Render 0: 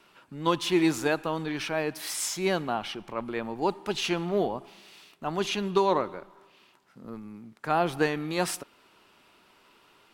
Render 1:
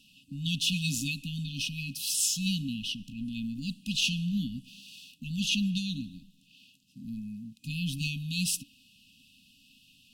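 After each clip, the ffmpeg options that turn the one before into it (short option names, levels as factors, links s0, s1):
-af "afftfilt=real='re*(1-between(b*sr/4096,290,2500))':imag='im*(1-between(b*sr/4096,290,2500))':win_size=4096:overlap=0.75,volume=1.58"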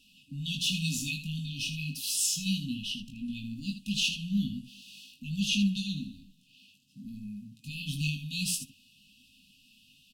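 -filter_complex "[0:a]flanger=delay=2.4:depth=7.7:regen=-40:speed=0.97:shape=triangular,asplit=2[s0][s1];[s1]aecho=0:1:20|79:0.596|0.335[s2];[s0][s2]amix=inputs=2:normalize=0,volume=1.19"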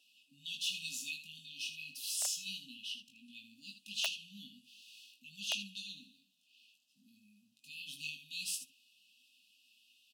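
-af "aeval=exprs='(mod(6.68*val(0)+1,2)-1)/6.68':c=same,highpass=f=640:t=q:w=6,volume=0.447"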